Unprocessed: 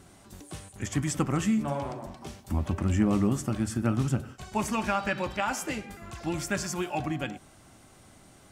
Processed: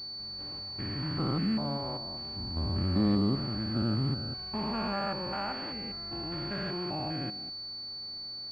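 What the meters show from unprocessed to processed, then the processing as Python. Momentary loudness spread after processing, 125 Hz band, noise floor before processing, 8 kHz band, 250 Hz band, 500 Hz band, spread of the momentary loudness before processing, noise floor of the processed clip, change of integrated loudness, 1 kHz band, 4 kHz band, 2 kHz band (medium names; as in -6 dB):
9 LU, -2.5 dB, -55 dBFS, under -30 dB, -3.0 dB, -3.5 dB, 16 LU, -41 dBFS, -3.0 dB, -4.5 dB, +10.0 dB, -7.5 dB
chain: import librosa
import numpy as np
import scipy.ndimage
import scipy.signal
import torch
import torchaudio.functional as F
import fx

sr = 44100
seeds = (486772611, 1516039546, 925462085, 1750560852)

y = fx.spec_steps(x, sr, hold_ms=200)
y = fx.pwm(y, sr, carrier_hz=4500.0)
y = y * librosa.db_to_amplitude(-1.0)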